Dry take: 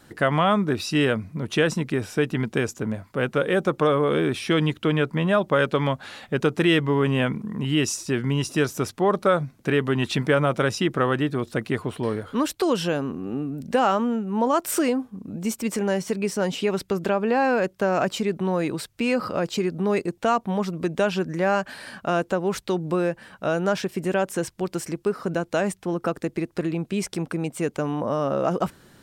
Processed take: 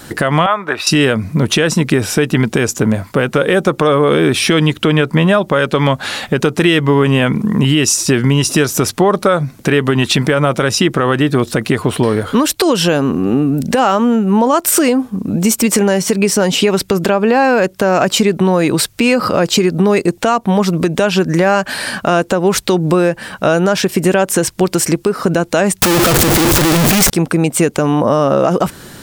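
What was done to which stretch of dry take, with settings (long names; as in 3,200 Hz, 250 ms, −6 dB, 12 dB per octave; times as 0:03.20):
0:00.46–0:00.87: three-way crossover with the lows and the highs turned down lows −23 dB, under 590 Hz, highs −17 dB, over 2,700 Hz
0:25.82–0:27.10: sign of each sample alone
whole clip: high-shelf EQ 4,100 Hz +5.5 dB; downward compressor, threshold −25 dBFS; boost into a limiter +18 dB; level −1 dB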